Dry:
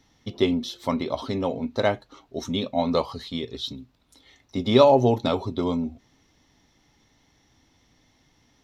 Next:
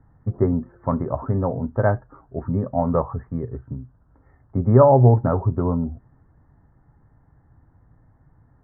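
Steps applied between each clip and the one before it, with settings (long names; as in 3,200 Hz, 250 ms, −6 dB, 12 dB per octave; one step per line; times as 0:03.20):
Butterworth low-pass 1,700 Hz 72 dB per octave
low shelf with overshoot 180 Hz +8.5 dB, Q 1.5
level +2.5 dB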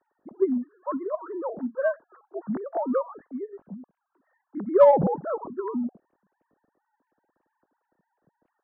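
three sine waves on the formant tracks
in parallel at −10.5 dB: soft clipping −8.5 dBFS, distortion −11 dB
on the sum: level −7.5 dB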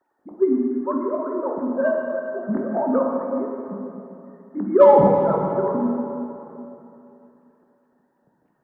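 dense smooth reverb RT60 3 s, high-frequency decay 0.75×, DRR −0.5 dB
level +2.5 dB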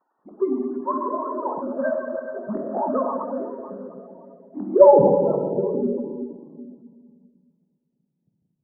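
spectral magnitudes quantised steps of 30 dB
low-pass filter sweep 1,100 Hz → 170 Hz, 0:03.80–0:07.72
level −4.5 dB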